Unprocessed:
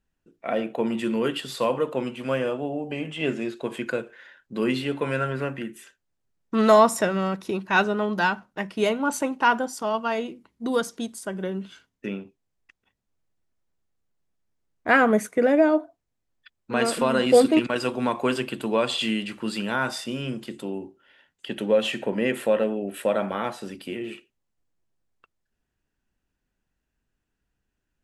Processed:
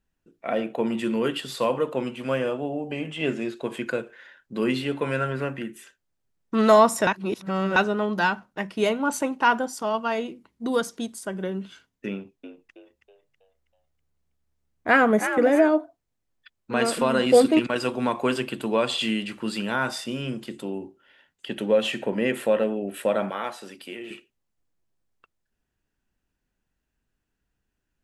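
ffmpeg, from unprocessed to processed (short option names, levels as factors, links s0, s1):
-filter_complex "[0:a]asettb=1/sr,asplit=3[s0][s1][s2];[s0]atrim=end=12.114[s3];[s1]atrim=start=12.11:end=15.69,asetpts=PTS-STARTPTS,afade=t=in:d=0.004:c=qsin,afade=t=out:st=3.576:d=0.004:c=qsin,asplit=6[s4][s5][s6][s7][s8][s9];[s5]adelay=323,afreqshift=70,volume=0.355[s10];[s6]adelay=646,afreqshift=140,volume=0.15[s11];[s7]adelay=969,afreqshift=210,volume=0.0624[s12];[s8]adelay=1292,afreqshift=280,volume=0.0263[s13];[s9]adelay=1615,afreqshift=350,volume=0.0111[s14];[s4][s10][s11][s12][s13][s14]amix=inputs=6:normalize=0,atrim=end_sample=157878[s15];[s2]atrim=start=15.686[s16];[s3][s15]acrossfade=d=0.004:c1=hsin:c2=qsin[s17];[s17][s16]acrossfade=d=0.004:c1=qsin:c2=hsin,asettb=1/sr,asplit=3[s18][s19][s20];[s18]atrim=end=23.304[s21];[s19]atrim=start=23.3:end=24.11,asetpts=PTS-STARTPTS,afade=t=in:d=0.004:c=qsin,afade=t=out:st=0.806:d=0.004:c=qsin,highpass=f=580:p=1[s22];[s20]atrim=start=24.106[s23];[s21][s22]acrossfade=d=0.004:c1=hsin:c2=qsin[s24];[s24][s23]acrossfade=d=0.004:c1=qsin:c2=hsin,asplit=3[s25][s26][s27];[s25]atrim=end=7.072[s28];[s26]atrim=start=7.068:end=7.762,asetpts=PTS-STARTPTS,areverse[s29];[s27]atrim=start=7.758[s30];[s28][s29]acrossfade=d=0.004:c1=hsin:c2=hsin[s31];[s31][s30]acrossfade=d=0.004:c1=hsin:c2=hsin"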